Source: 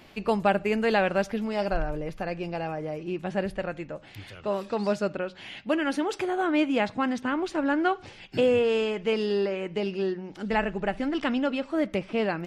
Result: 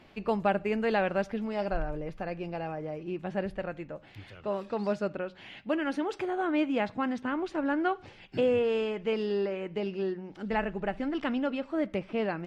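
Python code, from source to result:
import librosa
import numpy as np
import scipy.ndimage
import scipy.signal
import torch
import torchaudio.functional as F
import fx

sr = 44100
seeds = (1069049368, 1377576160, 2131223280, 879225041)

y = fx.lowpass(x, sr, hz=2900.0, slope=6)
y = y * librosa.db_to_amplitude(-3.5)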